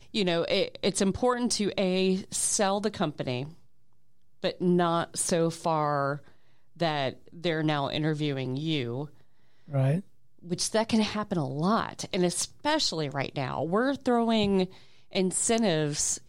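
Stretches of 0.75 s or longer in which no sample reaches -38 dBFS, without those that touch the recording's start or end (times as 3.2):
3.49–4.44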